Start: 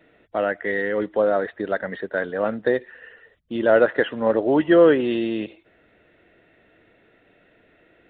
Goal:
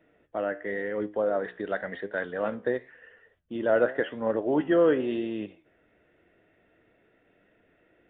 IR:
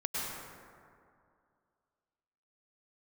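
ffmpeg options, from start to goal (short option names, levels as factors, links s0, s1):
-af "asetnsamples=n=441:p=0,asendcmd='1.44 highshelf g 5;2.55 highshelf g -5',highshelf=f=2200:g=-7.5,flanger=delay=9.5:depth=7.4:regen=77:speed=0.93:shape=sinusoidal,aresample=8000,aresample=44100,volume=0.794"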